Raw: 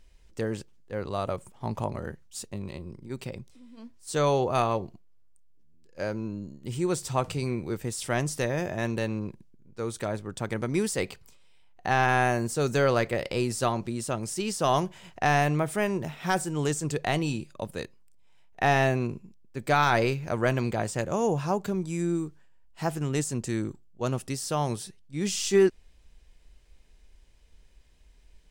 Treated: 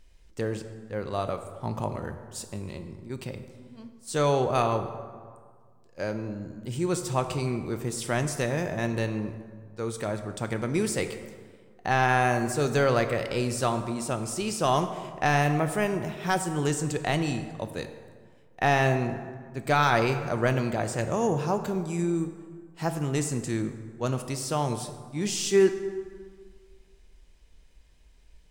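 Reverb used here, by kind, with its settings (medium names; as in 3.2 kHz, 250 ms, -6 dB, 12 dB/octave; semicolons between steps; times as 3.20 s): plate-style reverb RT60 1.8 s, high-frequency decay 0.55×, DRR 8 dB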